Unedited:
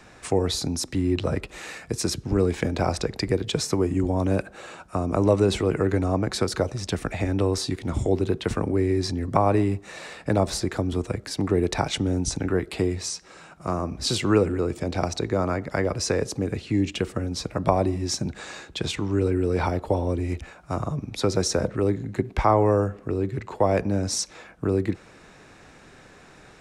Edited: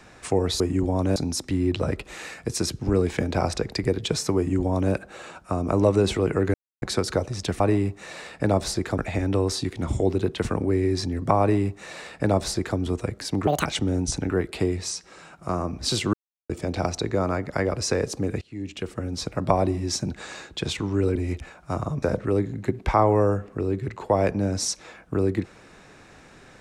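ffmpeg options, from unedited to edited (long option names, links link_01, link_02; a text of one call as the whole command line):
ffmpeg -i in.wav -filter_complex "[0:a]asplit=14[link_01][link_02][link_03][link_04][link_05][link_06][link_07][link_08][link_09][link_10][link_11][link_12][link_13][link_14];[link_01]atrim=end=0.602[link_15];[link_02]atrim=start=3.808:end=4.372[link_16];[link_03]atrim=start=0.598:end=5.98,asetpts=PTS-STARTPTS,afade=type=out:start_time=5.378:duration=0.004:curve=hsin[link_17];[link_04]atrim=start=5.98:end=6.26,asetpts=PTS-STARTPTS,volume=0[link_18];[link_05]atrim=start=6.26:end=7.042,asetpts=PTS-STARTPTS,afade=type=in:duration=0.004:curve=hsin[link_19];[link_06]atrim=start=9.458:end=10.842[link_20];[link_07]atrim=start=7.038:end=11.534[link_21];[link_08]atrim=start=11.53:end=11.84,asetpts=PTS-STARTPTS,asetrate=74088,aresample=44100[link_22];[link_09]atrim=start=11.836:end=14.32,asetpts=PTS-STARTPTS,afade=type=out:start_time=2.48:duration=0.004:curve=hsin[link_23];[link_10]atrim=start=14.32:end=14.68,asetpts=PTS-STARTPTS,volume=0[link_24];[link_11]atrim=start=14.68:end=16.6,asetpts=PTS-STARTPTS,afade=type=in:duration=0.004:curve=hsin,afade=type=out:start_time=1.916:duration=0.004:curve=hsin:silence=0.0794328[link_25];[link_12]atrim=start=16.6:end=19.342,asetpts=PTS-STARTPTS,afade=type=in:duration=0.82:silence=0.0794328[link_26];[link_13]atrim=start=20.158:end=21.032[link_27];[link_14]atrim=start=21.528[link_28];[link_15][link_16]acrossfade=duration=0.004:curve1=hsin:curve2=hsin[link_29];[link_17][link_18][link_19]concat=n=3:v=0:a=1[link_30];[link_29][link_30]acrossfade=duration=0.004:curve1=hsin:curve2=hsin[link_31];[link_31][link_20]acrossfade=duration=0.004:curve1=hsin:curve2=hsin[link_32];[link_32][link_21]acrossfade=duration=0.004:curve1=hsin:curve2=hsin[link_33];[link_33][link_22]acrossfade=duration=0.004:curve1=hsin:curve2=hsin[link_34];[link_23][link_24][link_25][link_26]concat=n=4:v=0:a=1[link_35];[link_34][link_35]acrossfade=duration=0.004:curve1=hsin:curve2=hsin[link_36];[link_36][link_27]acrossfade=duration=0.004:curve1=hsin:curve2=hsin[link_37];[link_37][link_28]acrossfade=duration=0.004:curve1=hsin:curve2=hsin" out.wav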